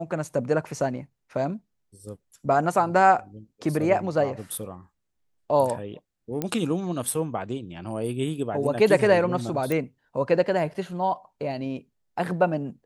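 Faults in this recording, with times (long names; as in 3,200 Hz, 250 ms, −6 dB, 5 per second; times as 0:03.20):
0:06.42: click −13 dBFS
0:09.72: click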